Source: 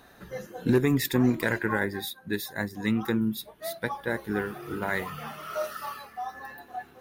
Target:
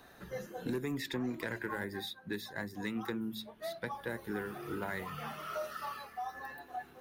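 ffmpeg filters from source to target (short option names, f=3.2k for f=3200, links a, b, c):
-filter_complex "[0:a]acrossover=split=230|5800[a][b][c];[a]acompressor=threshold=-41dB:ratio=4[d];[b]acompressor=threshold=-32dB:ratio=4[e];[c]acompressor=threshold=-54dB:ratio=4[f];[d][e][f]amix=inputs=3:normalize=0,bandreject=f=54.36:t=h:w=4,bandreject=f=108.72:t=h:w=4,bandreject=f=163.08:t=h:w=4,bandreject=f=217.44:t=h:w=4,bandreject=f=271.8:t=h:w=4,asoftclip=type=tanh:threshold=-21.5dB,volume=-3dB"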